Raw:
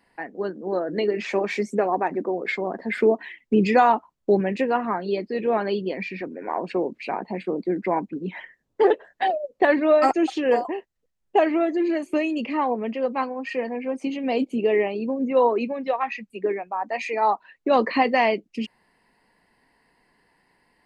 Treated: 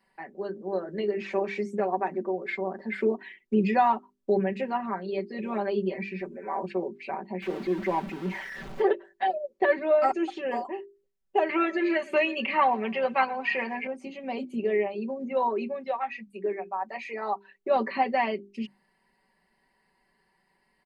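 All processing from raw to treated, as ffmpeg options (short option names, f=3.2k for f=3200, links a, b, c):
-filter_complex "[0:a]asettb=1/sr,asplit=3[a][b][c];[a]atrim=end=5.384[d];[b]atrim=start=5.38:end=6.66,asetpts=PTS-STARTPTS,afade=t=in:d=0.004:c=qsin,afade=t=out:st=1.276:d=0.004:c=qsin,highshelf=f=6.2k:g=6,aecho=1:1:5.1:0.51,atrim=end_sample=56448[e];[c]atrim=start=6.656[f];[d][e]acrossfade=d=0.004:c1=hsin:c2=qsin[g];[g][f]acrossfade=d=0.004:c1=qsin:c2=hsin,asettb=1/sr,asplit=3[h][i][j];[h]atrim=end=7.424[k];[i]atrim=start=7.42:end=8.82,asetpts=PTS-STARTPTS,afade=t=in:d=0.004:c=qsin,afade=t=out:st=1.396:d=0.004:c=qsin,aeval=exprs='val(0)+0.5*0.0447*sgn(val(0))':c=same,acrossover=split=4600[l][m];[m]acompressor=threshold=-51dB:ratio=4:attack=1:release=60[n];[l][n]amix=inputs=2:normalize=0[o];[j]atrim=start=8.816[p];[k][o]acrossfade=d=0.004:c1=hsin:c2=qsin[q];[q][p]acrossfade=d=0.004:c1=qsin:c2=hsin,asettb=1/sr,asplit=3[r][s][t];[r]atrim=end=11.494[u];[s]atrim=start=11.49:end=13.87,asetpts=PTS-STARTPTS,afade=t=in:d=0.004:c=qsin,afade=t=out:st=2.376:d=0.004:c=qsin,equalizer=f=2.5k:w=0.31:g=14,asplit=4[v][w][x][y];[w]adelay=119,afreqshift=-31,volume=-21.5dB[z];[x]adelay=238,afreqshift=-62,volume=-28.2dB[aa];[y]adelay=357,afreqshift=-93,volume=-35dB[ab];[v][z][aa][ab]amix=inputs=4:normalize=0,atrim=end_sample=104958[ac];[t]atrim=start=13.866[ad];[u][ac]acrossfade=d=0.004:c1=hsin:c2=qsin[ae];[ae][ad]acrossfade=d=0.004:c1=qsin:c2=hsin,acrossover=split=3600[af][ag];[ag]acompressor=threshold=-50dB:ratio=4:attack=1:release=60[ah];[af][ah]amix=inputs=2:normalize=0,bandreject=f=50:t=h:w=6,bandreject=f=100:t=h:w=6,bandreject=f=150:t=h:w=6,bandreject=f=200:t=h:w=6,bandreject=f=250:t=h:w=6,bandreject=f=300:t=h:w=6,bandreject=f=350:t=h:w=6,bandreject=f=400:t=h:w=6,aecho=1:1:5.2:0.91,volume=-8.5dB"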